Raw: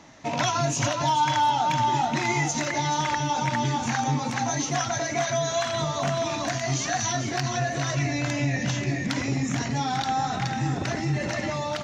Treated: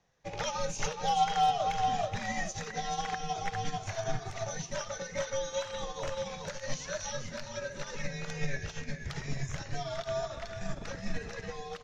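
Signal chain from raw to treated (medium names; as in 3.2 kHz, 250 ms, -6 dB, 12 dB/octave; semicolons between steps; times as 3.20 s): spectral replace 3.93–4.43 s, 1–2 kHz; frequency shift -130 Hz; in parallel at -1.5 dB: peak limiter -19.5 dBFS, peak gain reduction 8.5 dB; on the sum: upward expansion 2.5:1, over -31 dBFS; trim -6 dB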